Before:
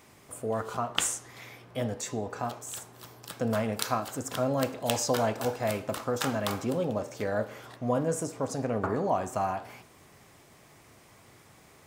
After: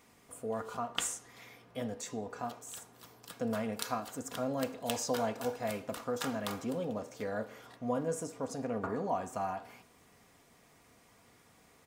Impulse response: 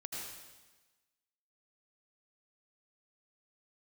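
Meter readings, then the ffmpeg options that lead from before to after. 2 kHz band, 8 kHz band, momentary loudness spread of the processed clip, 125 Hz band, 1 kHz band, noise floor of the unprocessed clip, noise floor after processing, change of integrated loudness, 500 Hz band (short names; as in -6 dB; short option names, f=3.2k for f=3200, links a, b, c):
-6.5 dB, -6.5 dB, 12 LU, -10.0 dB, -6.0 dB, -57 dBFS, -64 dBFS, -6.0 dB, -6.0 dB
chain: -af "aecho=1:1:4.2:0.38,volume=-7dB"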